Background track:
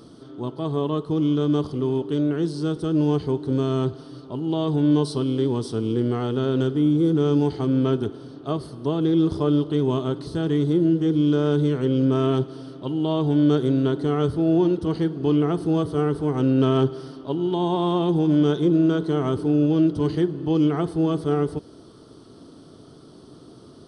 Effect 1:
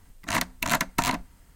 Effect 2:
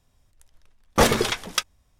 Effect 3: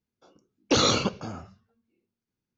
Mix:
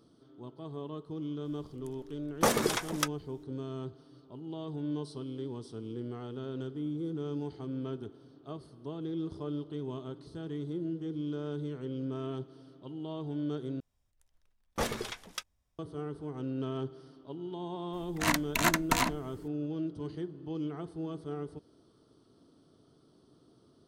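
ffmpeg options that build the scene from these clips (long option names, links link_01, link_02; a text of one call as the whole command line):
ffmpeg -i bed.wav -i cue0.wav -i cue1.wav -filter_complex "[2:a]asplit=2[link_01][link_02];[0:a]volume=-16.5dB[link_03];[link_01]acrossover=split=130|1700|5800[link_04][link_05][link_06][link_07];[link_04]acompressor=threshold=-53dB:ratio=3[link_08];[link_05]acompressor=threshold=-25dB:ratio=3[link_09];[link_06]acompressor=threshold=-42dB:ratio=3[link_10];[link_07]acompressor=threshold=-34dB:ratio=3[link_11];[link_08][link_09][link_10][link_11]amix=inputs=4:normalize=0[link_12];[link_03]asplit=2[link_13][link_14];[link_13]atrim=end=13.804[link_15];[link_02]atrim=end=1.99,asetpts=PTS-STARTPTS,volume=-15dB[link_16];[link_14]atrim=start=15.786[link_17];[link_12]atrim=end=1.99,asetpts=PTS-STARTPTS,volume=-0.5dB,afade=type=in:duration=0.004:curve=hsin,afade=type=out:start_time=1.986:duration=0.004:curve=hsin,adelay=1450[link_18];[1:a]atrim=end=1.55,asetpts=PTS-STARTPTS,volume=-2.5dB,afade=type=in:duration=0.004:curve=hsin,afade=type=out:start_time=1.546:duration=0.004:curve=hsin,adelay=17930[link_19];[link_15][link_16]acrossfade=duration=0.004:curve1=hsin:curve2=hsin[link_20];[link_20][link_17]acrossfade=duration=0.004:curve1=hsin:curve2=hsin[link_21];[link_21][link_18][link_19]amix=inputs=3:normalize=0" out.wav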